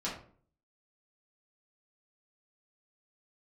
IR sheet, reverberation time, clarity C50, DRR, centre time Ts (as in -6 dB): 0.50 s, 5.5 dB, -7.5 dB, 33 ms